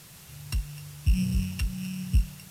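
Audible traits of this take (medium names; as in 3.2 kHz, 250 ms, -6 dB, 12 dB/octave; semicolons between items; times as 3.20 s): a buzz of ramps at a fixed pitch in blocks of 16 samples; phasing stages 2, 2.5 Hz, lowest notch 590–1300 Hz; a quantiser's noise floor 8-bit, dither triangular; AAC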